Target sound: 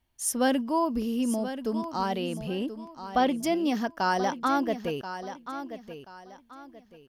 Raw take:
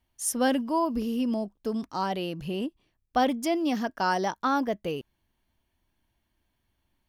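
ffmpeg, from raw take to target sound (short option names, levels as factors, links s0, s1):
-filter_complex "[0:a]asettb=1/sr,asplit=3[s0][s1][s2];[s0]atrim=end=2.154[s3];[s1]atrim=start=2.15:end=3.34,asetpts=PTS-STARTPTS,afade=t=in:d=0.004:c=qsin,afade=t=out:st=1.186:d=0.004:c=qsin,acrossover=split=5500[s4][s5];[s5]acompressor=threshold=0.00141:ratio=4:attack=1:release=60[s6];[s4][s6]amix=inputs=2:normalize=0[s7];[s2]atrim=start=3.336[s8];[s3][s7]acrossfade=d=0.004:c1=hsin:c2=qsin[s9];[s9][s8]acrossfade=d=0.004:c1=qsin:c2=hsin,aecho=1:1:1032|2064|3096:0.282|0.0846|0.0254"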